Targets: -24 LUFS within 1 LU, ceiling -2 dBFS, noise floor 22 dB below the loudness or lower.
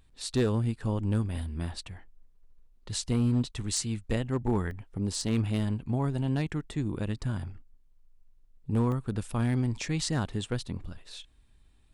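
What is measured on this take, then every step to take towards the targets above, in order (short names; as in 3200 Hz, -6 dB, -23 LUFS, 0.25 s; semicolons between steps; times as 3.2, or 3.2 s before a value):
clipped 0.4%; flat tops at -19.0 dBFS; dropouts 2; longest dropout 1.1 ms; loudness -31.0 LUFS; peak -19.0 dBFS; loudness target -24.0 LUFS
-> clip repair -19 dBFS; interpolate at 4.71/8.92, 1.1 ms; gain +7 dB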